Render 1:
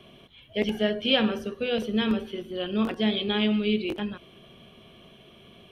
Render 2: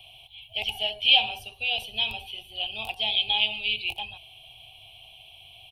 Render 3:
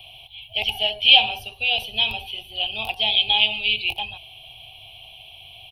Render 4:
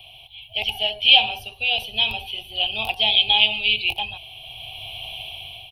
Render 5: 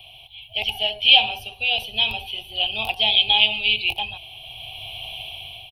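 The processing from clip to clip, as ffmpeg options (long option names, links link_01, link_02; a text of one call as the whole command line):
ffmpeg -i in.wav -af "firequalizer=gain_entry='entry(110,0);entry(190,-29);entry(530,-18);entry(770,8);entry(1200,-21);entry(1800,-22);entry(2500,10);entry(6200,-3);entry(9500,9)':delay=0.05:min_phase=1" out.wav
ffmpeg -i in.wav -af "equalizer=frequency=7700:width_type=o:width=0.35:gain=-14,volume=6dB" out.wav
ffmpeg -i in.wav -af "dynaudnorm=framelen=370:gausssize=5:maxgain=15dB,volume=-1dB" out.wav
ffmpeg -i in.wav -filter_complex "[0:a]asplit=2[link_01][link_02];[link_02]adelay=344,volume=-29dB,highshelf=frequency=4000:gain=-7.74[link_03];[link_01][link_03]amix=inputs=2:normalize=0" out.wav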